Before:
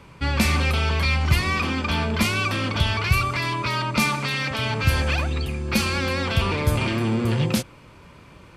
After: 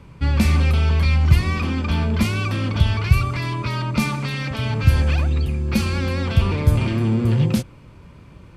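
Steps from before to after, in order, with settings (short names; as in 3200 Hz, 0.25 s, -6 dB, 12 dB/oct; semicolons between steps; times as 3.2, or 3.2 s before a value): low shelf 310 Hz +11.5 dB; gain -4.5 dB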